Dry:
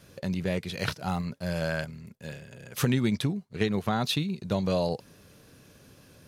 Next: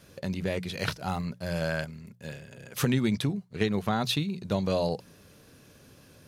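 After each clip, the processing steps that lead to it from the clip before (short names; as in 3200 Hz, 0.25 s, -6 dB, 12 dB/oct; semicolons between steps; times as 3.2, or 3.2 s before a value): notches 60/120/180 Hz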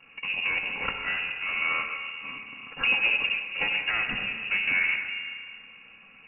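minimum comb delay 3.5 ms; digital reverb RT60 1.9 s, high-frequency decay 0.75×, pre-delay 25 ms, DRR 4.5 dB; inverted band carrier 2800 Hz; gain +3.5 dB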